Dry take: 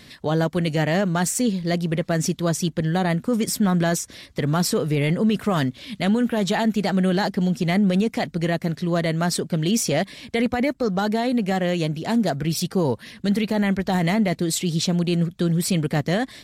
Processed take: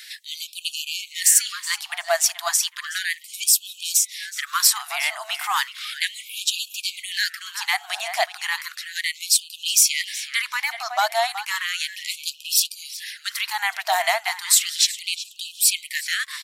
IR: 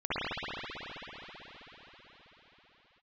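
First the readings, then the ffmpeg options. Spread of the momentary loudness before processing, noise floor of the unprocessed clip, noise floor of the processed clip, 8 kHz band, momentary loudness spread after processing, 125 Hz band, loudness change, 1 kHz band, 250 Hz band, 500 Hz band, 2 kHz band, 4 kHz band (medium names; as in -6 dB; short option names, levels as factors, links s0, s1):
4 LU, -48 dBFS, -47 dBFS, +10.5 dB, 11 LU, under -40 dB, +0.5 dB, +0.5 dB, under -40 dB, -9.5 dB, +5.0 dB, +8.0 dB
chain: -filter_complex "[0:a]crystalizer=i=1:c=0,asplit=2[s0][s1];[s1]adelay=372,lowpass=f=3800:p=1,volume=0.282,asplit=2[s2][s3];[s3]adelay=372,lowpass=f=3800:p=1,volume=0.3,asplit=2[s4][s5];[s5]adelay=372,lowpass=f=3800:p=1,volume=0.3[s6];[s0][s2][s4][s6]amix=inputs=4:normalize=0,afftfilt=real='re*gte(b*sr/1024,610*pow(2500/610,0.5+0.5*sin(2*PI*0.34*pts/sr)))':imag='im*gte(b*sr/1024,610*pow(2500/610,0.5+0.5*sin(2*PI*0.34*pts/sr)))':win_size=1024:overlap=0.75,volume=1.88"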